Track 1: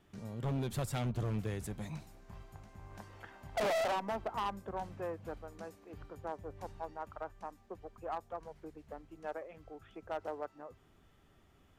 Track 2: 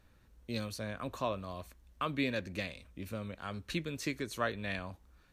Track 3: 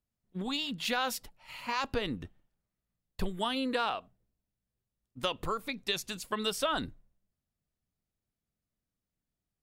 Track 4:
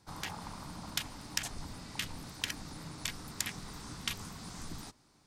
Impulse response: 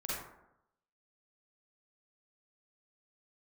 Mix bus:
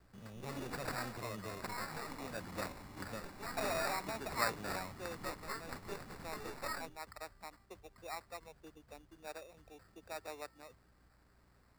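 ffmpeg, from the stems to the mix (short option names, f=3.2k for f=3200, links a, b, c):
-filter_complex "[0:a]aexciter=amount=15.8:drive=3.8:freq=11k,aeval=exprs='val(0)+0.000708*(sin(2*PI*60*n/s)+sin(2*PI*2*60*n/s)/2+sin(2*PI*3*60*n/s)/3+sin(2*PI*4*60*n/s)/4+sin(2*PI*5*60*n/s)/5)':c=same,volume=-7dB[a];[1:a]equalizer=f=5.7k:w=1.7:g=11,volume=-5dB[b];[2:a]aecho=1:1:7.2:0.76,aeval=exprs='max(val(0),0)':c=same,flanger=delay=19.5:depth=5.1:speed=0.34,volume=-8.5dB,asplit=2[c][d];[3:a]lowpass=f=1k:p=1,adelay=1650,volume=-4.5dB[e];[d]apad=whole_len=234627[f];[b][f]sidechaincompress=threshold=-53dB:ratio=10:attack=7:release=374[g];[a][g][c][e]amix=inputs=4:normalize=0,adynamicequalizer=threshold=0.001:dfrequency=1300:dqfactor=2.3:tfrequency=1300:tqfactor=2.3:attack=5:release=100:ratio=0.375:range=3.5:mode=boostabove:tftype=bell,acrossover=split=220[h][i];[h]acompressor=threshold=-50dB:ratio=6[j];[j][i]amix=inputs=2:normalize=0,acrusher=samples=14:mix=1:aa=0.000001"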